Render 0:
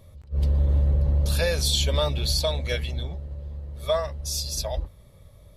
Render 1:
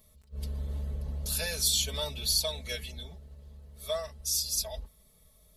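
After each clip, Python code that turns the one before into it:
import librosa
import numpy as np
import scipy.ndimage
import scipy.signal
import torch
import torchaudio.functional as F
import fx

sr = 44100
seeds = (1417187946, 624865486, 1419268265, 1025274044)

y = F.preemphasis(torch.from_numpy(x), 0.8).numpy()
y = y + 0.81 * np.pad(y, (int(4.6 * sr / 1000.0), 0))[:len(y)]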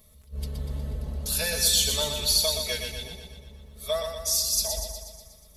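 y = fx.echo_feedback(x, sr, ms=121, feedback_pct=58, wet_db=-6)
y = y * librosa.db_to_amplitude(4.5)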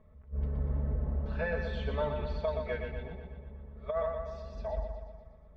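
y = scipy.signal.sosfilt(scipy.signal.butter(4, 1700.0, 'lowpass', fs=sr, output='sos'), x)
y = fx.over_compress(y, sr, threshold_db=-28.0, ratio=-0.5)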